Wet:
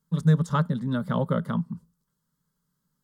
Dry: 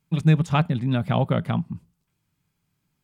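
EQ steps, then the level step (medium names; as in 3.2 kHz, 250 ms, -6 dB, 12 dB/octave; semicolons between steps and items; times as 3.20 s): static phaser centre 490 Hz, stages 8; 0.0 dB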